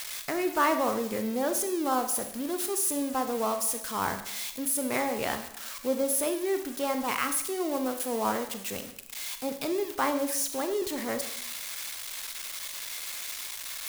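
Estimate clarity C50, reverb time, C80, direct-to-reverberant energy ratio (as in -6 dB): 9.5 dB, 0.75 s, 12.5 dB, 7.5 dB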